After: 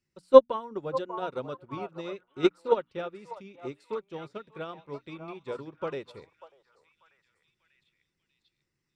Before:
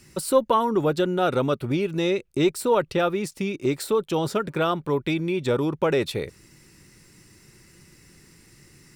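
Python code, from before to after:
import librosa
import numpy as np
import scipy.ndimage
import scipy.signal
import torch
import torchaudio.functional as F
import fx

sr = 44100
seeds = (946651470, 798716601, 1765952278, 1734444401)

p1 = fx.level_steps(x, sr, step_db=17)
p2 = x + F.gain(torch.from_numpy(p1), 0.0).numpy()
p3 = scipy.signal.sosfilt(scipy.signal.butter(2, 5900.0, 'lowpass', fs=sr, output='sos'), p2)
p4 = fx.peak_eq(p3, sr, hz=510.0, db=2.5, octaves=0.27)
p5 = fx.hum_notches(p4, sr, base_hz=60, count=5)
p6 = p5 + fx.echo_stepped(p5, sr, ms=592, hz=850.0, octaves=0.7, feedback_pct=70, wet_db=-1.0, dry=0)
y = fx.upward_expand(p6, sr, threshold_db=-28.0, expansion=2.5)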